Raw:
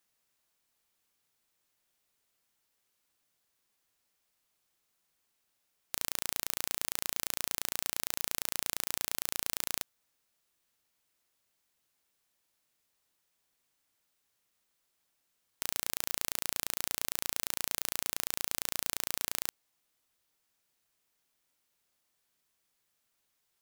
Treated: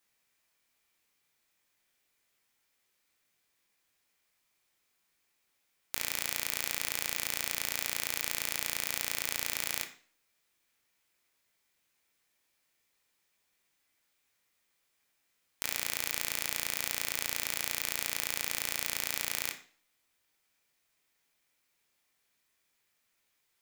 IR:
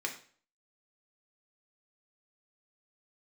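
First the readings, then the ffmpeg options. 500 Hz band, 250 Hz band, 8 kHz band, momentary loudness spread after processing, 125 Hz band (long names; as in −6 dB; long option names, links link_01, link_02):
+1.0 dB, 0.0 dB, +1.0 dB, 2 LU, +1.5 dB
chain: -filter_complex "[0:a]asplit=2[link_01][link_02];[link_02]equalizer=frequency=2300:width_type=o:width=1.3:gain=6.5[link_03];[1:a]atrim=start_sample=2205,adelay=21[link_04];[link_03][link_04]afir=irnorm=-1:irlink=0,volume=-6dB[link_05];[link_01][link_05]amix=inputs=2:normalize=0"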